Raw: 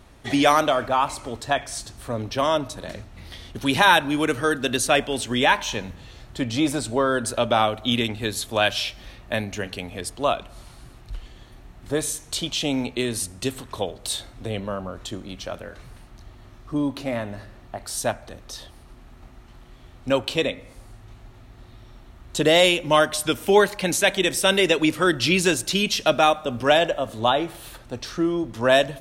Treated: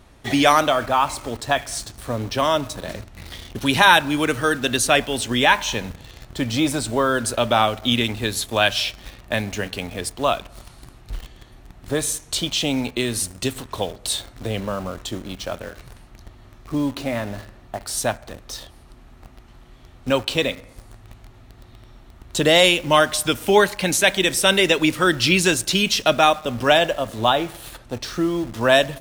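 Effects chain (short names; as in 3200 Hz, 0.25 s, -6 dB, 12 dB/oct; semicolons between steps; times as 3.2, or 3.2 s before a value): dynamic EQ 430 Hz, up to -3 dB, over -28 dBFS, Q 0.73; in parallel at -6 dB: bit-crush 6-bit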